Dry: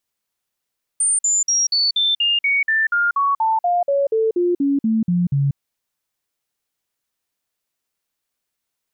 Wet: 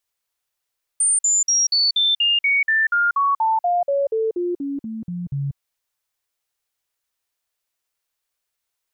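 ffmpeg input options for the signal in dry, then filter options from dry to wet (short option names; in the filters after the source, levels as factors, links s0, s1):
-f lavfi -i "aevalsrc='0.188*clip(min(mod(t,0.24),0.19-mod(t,0.24))/0.005,0,1)*sin(2*PI*8950*pow(2,-floor(t/0.24)/3)*mod(t,0.24))':d=4.56:s=44100"
-af "equalizer=f=210:w=1.1:g=-12"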